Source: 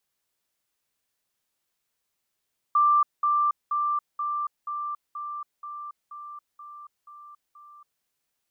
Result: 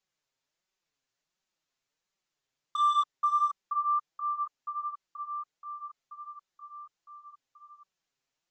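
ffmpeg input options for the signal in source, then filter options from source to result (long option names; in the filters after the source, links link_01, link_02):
-f lavfi -i "aevalsrc='pow(10,(-16.5-3*floor(t/0.48))/20)*sin(2*PI*1180*t)*clip(min(mod(t,0.48),0.28-mod(t,0.48))/0.005,0,1)':duration=5.28:sample_rate=44100"
-af "aresample=16000,volume=20dB,asoftclip=hard,volume=-20dB,aresample=44100,flanger=delay=5.2:depth=2.4:regen=2:speed=1.4:shape=sinusoidal"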